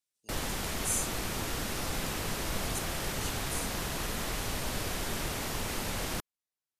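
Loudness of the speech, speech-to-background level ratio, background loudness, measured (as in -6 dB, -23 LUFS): -38.5 LUFS, -4.0 dB, -34.5 LUFS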